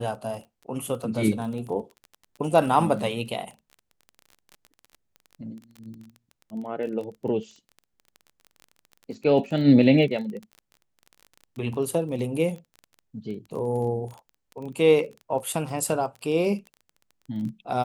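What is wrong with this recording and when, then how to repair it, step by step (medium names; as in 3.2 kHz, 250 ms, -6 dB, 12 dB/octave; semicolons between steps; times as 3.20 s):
crackle 21 per s -34 dBFS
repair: de-click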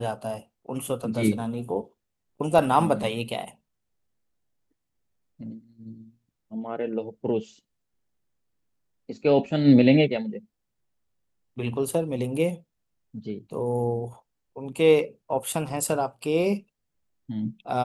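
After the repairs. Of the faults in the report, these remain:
nothing left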